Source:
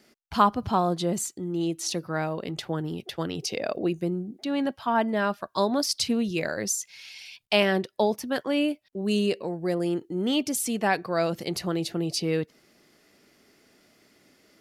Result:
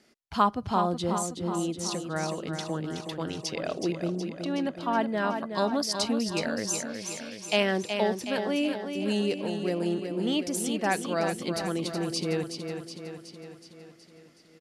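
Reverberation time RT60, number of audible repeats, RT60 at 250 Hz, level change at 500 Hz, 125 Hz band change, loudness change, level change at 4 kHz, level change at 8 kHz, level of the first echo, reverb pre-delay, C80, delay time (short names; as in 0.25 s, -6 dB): none, 7, none, -2.0 dB, -2.0 dB, -2.0 dB, -2.0 dB, -2.0 dB, -7.0 dB, none, none, 0.371 s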